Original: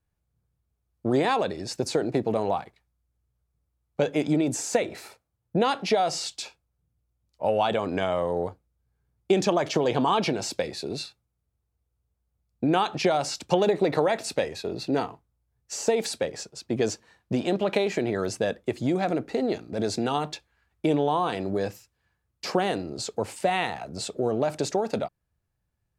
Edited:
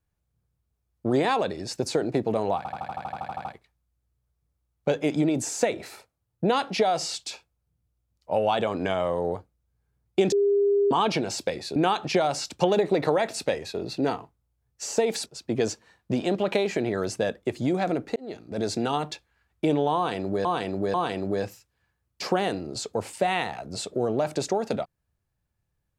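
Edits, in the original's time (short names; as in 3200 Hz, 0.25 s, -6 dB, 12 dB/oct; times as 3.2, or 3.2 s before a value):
2.57 stutter 0.08 s, 12 plays
9.44–10.03 bleep 403 Hz -18 dBFS
10.88–12.66 cut
16.16–16.47 cut
19.37–19.99 fade in equal-power
21.17–21.66 loop, 3 plays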